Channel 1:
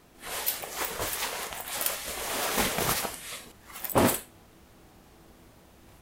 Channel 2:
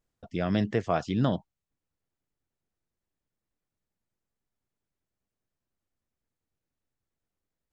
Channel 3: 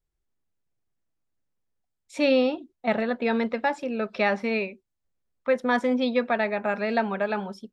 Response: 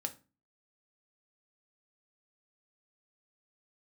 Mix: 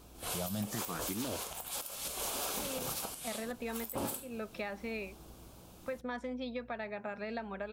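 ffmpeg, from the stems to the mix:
-filter_complex "[0:a]equalizer=frequency=1900:width=4:gain=-13.5,asoftclip=type=tanh:threshold=-6.5dB,volume=-2dB,asplit=2[link_01][link_02];[link_02]volume=-12.5dB[link_03];[1:a]alimiter=limit=-17dB:level=0:latency=1,aeval=exprs='val(0)+0.00178*(sin(2*PI*60*n/s)+sin(2*PI*2*60*n/s)/2+sin(2*PI*3*60*n/s)/3+sin(2*PI*4*60*n/s)/4+sin(2*PI*5*60*n/s)/5)':channel_layout=same,asplit=2[link_04][link_05];[link_05]afreqshift=0.78[link_06];[link_04][link_06]amix=inputs=2:normalize=1,volume=-1dB[link_07];[2:a]adelay=400,volume=-10.5dB[link_08];[link_01][link_08]amix=inputs=2:normalize=0,acompressor=threshold=-36dB:ratio=6,volume=0dB[link_09];[3:a]atrim=start_sample=2205[link_10];[link_03][link_10]afir=irnorm=-1:irlink=0[link_11];[link_07][link_09][link_11]amix=inputs=3:normalize=0,highshelf=frequency=5000:gain=4.5,alimiter=level_in=2.5dB:limit=-24dB:level=0:latency=1:release=195,volume=-2.5dB"

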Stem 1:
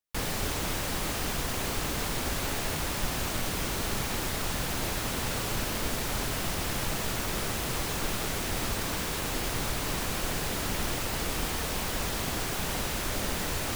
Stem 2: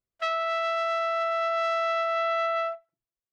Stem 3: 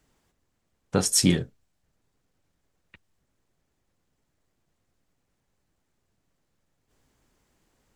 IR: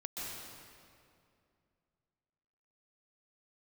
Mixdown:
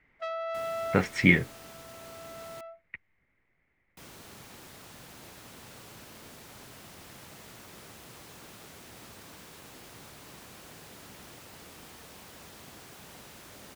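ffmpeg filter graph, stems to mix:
-filter_complex "[0:a]highpass=92,adelay=400,volume=-17dB,asplit=3[link_01][link_02][link_03];[link_01]atrim=end=2.61,asetpts=PTS-STARTPTS,afade=type=out:start_time=2.606:duration=0.004:curve=hsin[link_04];[link_02]atrim=start=2.61:end=3.97,asetpts=PTS-STARTPTS,volume=0[link_05];[link_03]atrim=start=3.97,asetpts=PTS-STARTPTS,afade=type=in:duration=0.004:curve=hsin[link_06];[link_04][link_05][link_06]concat=n=3:v=0:a=1[link_07];[1:a]equalizer=frequency=540:width=0.75:gain=10.5,volume=-13dB[link_08];[2:a]lowpass=frequency=2100:width_type=q:width=10,volume=-1.5dB,asplit=2[link_09][link_10];[link_10]apad=whole_len=146505[link_11];[link_08][link_11]sidechaincompress=threshold=-38dB:ratio=8:attack=11:release=1430[link_12];[link_07][link_12][link_09]amix=inputs=3:normalize=0"

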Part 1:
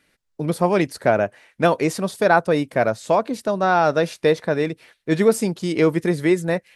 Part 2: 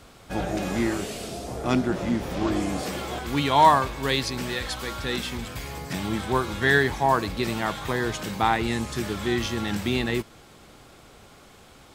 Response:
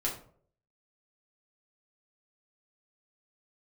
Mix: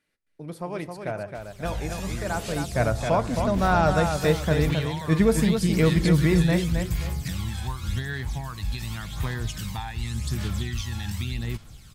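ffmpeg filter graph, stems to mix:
-filter_complex "[0:a]volume=-5dB,afade=type=in:start_time=2.47:duration=0.4:silence=0.316228,asplit=3[link_01][link_02][link_03];[link_02]volume=-15.5dB[link_04];[link_03]volume=-4.5dB[link_05];[1:a]highshelf=frequency=2300:gain=12,acompressor=threshold=-24dB:ratio=5,aphaser=in_gain=1:out_gain=1:delay=1.2:decay=0.51:speed=0.88:type=sinusoidal,adelay=1350,volume=-10dB[link_06];[2:a]atrim=start_sample=2205[link_07];[link_04][link_07]afir=irnorm=-1:irlink=0[link_08];[link_05]aecho=0:1:266|532|798|1064|1330:1|0.32|0.102|0.0328|0.0105[link_09];[link_01][link_06][link_08][link_09]amix=inputs=4:normalize=0,asubboost=boost=8:cutoff=130"

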